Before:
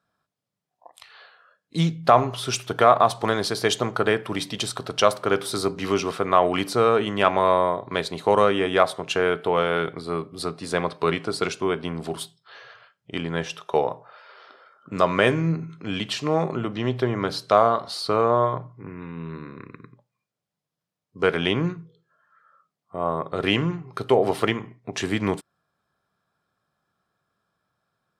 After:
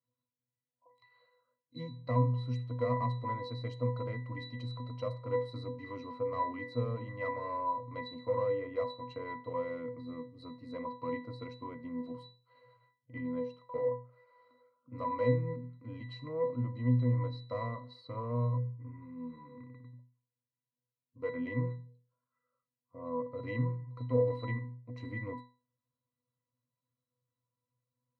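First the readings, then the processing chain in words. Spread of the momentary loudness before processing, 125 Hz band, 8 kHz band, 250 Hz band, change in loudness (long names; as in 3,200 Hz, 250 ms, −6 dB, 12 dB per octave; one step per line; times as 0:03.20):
14 LU, −4.0 dB, below −40 dB, −12.0 dB, −13.0 dB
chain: asymmetric clip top −14.5 dBFS
resonances in every octave B, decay 0.35 s
level +3.5 dB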